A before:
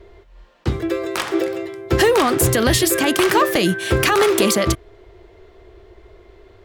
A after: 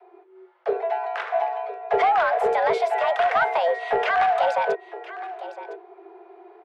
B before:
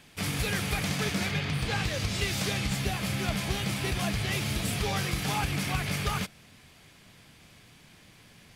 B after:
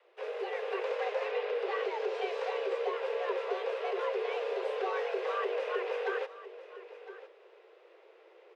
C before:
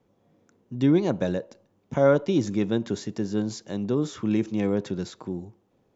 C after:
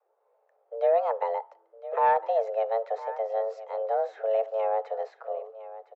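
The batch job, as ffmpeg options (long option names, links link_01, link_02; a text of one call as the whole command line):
ffmpeg -i in.wav -af "afreqshift=35,lowpass=1600,lowshelf=frequency=260:gain=3,aecho=1:1:1009:0.158,afreqshift=300,asoftclip=type=tanh:threshold=-7dB,adynamicequalizer=threshold=0.0112:dfrequency=380:dqfactor=3.5:tfrequency=380:tqfactor=3.5:attack=5:release=100:ratio=0.375:range=2:mode=cutabove:tftype=bell,dynaudnorm=framelen=420:gausssize=3:maxgain=4.5dB,volume=-7.5dB" out.wav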